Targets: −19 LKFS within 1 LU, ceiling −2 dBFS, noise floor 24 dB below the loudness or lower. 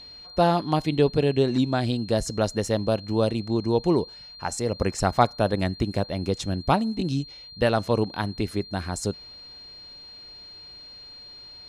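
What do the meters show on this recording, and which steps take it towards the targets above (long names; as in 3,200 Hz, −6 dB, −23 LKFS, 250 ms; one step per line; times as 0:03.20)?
interfering tone 4,200 Hz; level of the tone −42 dBFS; integrated loudness −25.0 LKFS; sample peak −5.5 dBFS; target loudness −19.0 LKFS
→ notch filter 4,200 Hz, Q 30
level +6 dB
brickwall limiter −2 dBFS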